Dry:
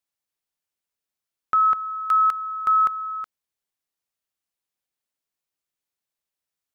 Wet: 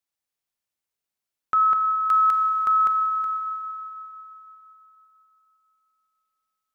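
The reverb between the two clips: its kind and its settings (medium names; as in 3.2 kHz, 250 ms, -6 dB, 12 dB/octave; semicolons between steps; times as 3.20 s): Schroeder reverb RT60 3.4 s, combs from 31 ms, DRR 4.5 dB; trim -1.5 dB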